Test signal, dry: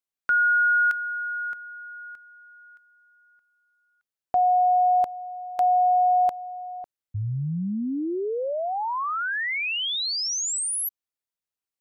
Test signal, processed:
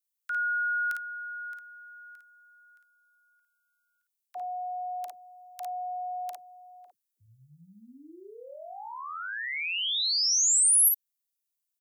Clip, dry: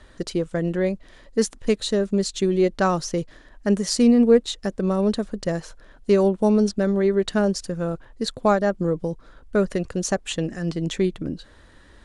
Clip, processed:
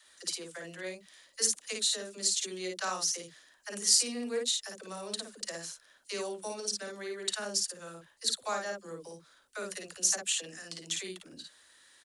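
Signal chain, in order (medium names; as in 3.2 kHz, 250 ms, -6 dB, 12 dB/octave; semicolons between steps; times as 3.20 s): differentiator; phase dispersion lows, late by 69 ms, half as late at 320 Hz; on a send: early reflections 41 ms -16.5 dB, 54 ms -3.5 dB; on the sum: trim +3 dB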